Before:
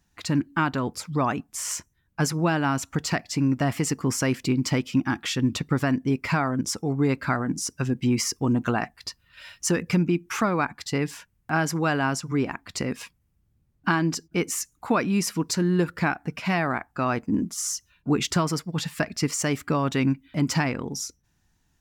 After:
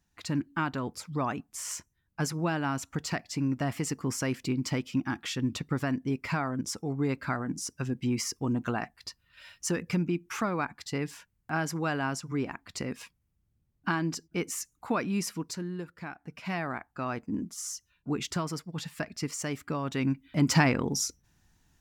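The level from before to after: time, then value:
0:15.24 −6.5 dB
0:15.96 −18 dB
0:16.54 −8.5 dB
0:19.84 −8.5 dB
0:20.63 +2 dB

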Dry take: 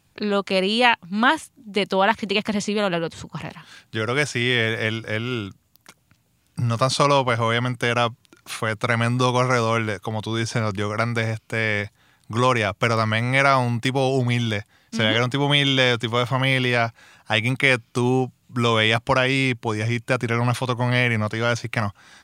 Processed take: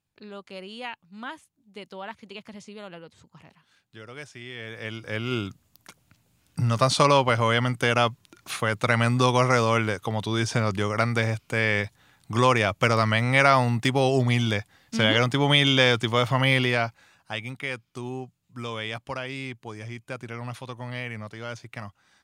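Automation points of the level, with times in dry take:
0:04.54 −19 dB
0:04.95 −9 dB
0:05.34 −1 dB
0:16.57 −1 dB
0:17.52 −14 dB

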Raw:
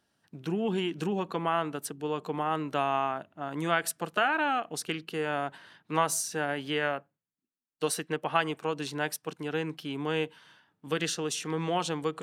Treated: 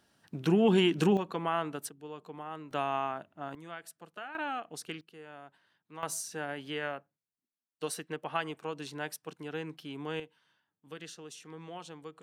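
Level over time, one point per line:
+5.5 dB
from 0:01.17 −3 dB
from 0:01.89 −12 dB
from 0:02.71 −4 dB
from 0:03.55 −17 dB
from 0:04.35 −7.5 dB
from 0:05.01 −18 dB
from 0:06.03 −6.5 dB
from 0:10.20 −15 dB

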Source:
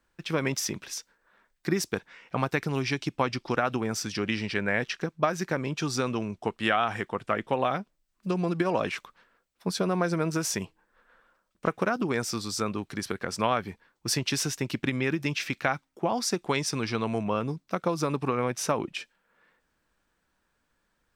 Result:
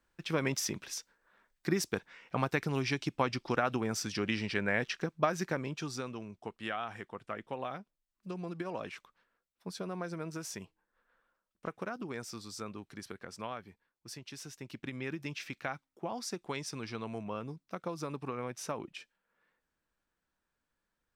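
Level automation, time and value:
0:05.43 −4 dB
0:06.13 −12.5 dB
0:13.05 −12.5 dB
0:14.25 −19.5 dB
0:15.06 −11 dB

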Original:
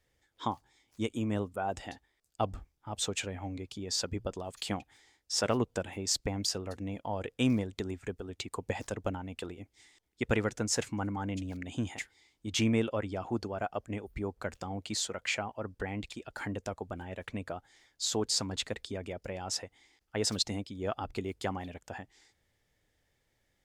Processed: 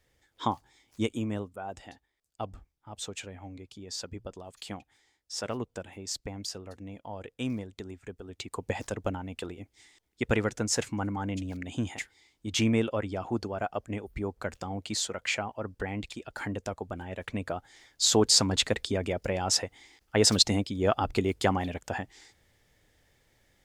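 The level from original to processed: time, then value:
0:01.02 +4.5 dB
0:01.56 −5 dB
0:08.04 −5 dB
0:08.65 +2.5 dB
0:17.03 +2.5 dB
0:18.13 +9 dB

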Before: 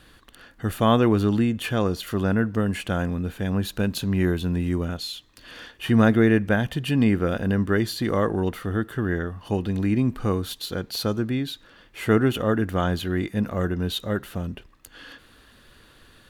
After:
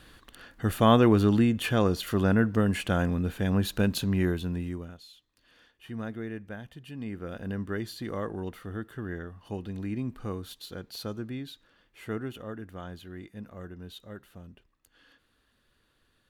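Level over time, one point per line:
0:03.91 −1 dB
0:04.63 −8 dB
0:05.04 −19 dB
0:06.96 −19 dB
0:07.48 −11 dB
0:11.43 −11 dB
0:12.62 −17.5 dB

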